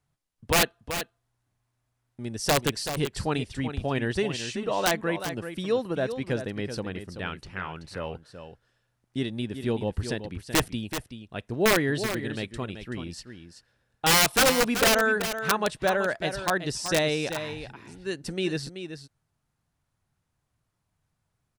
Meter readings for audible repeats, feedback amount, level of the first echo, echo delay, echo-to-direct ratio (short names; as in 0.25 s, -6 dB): 1, no steady repeat, -9.5 dB, 0.381 s, -9.5 dB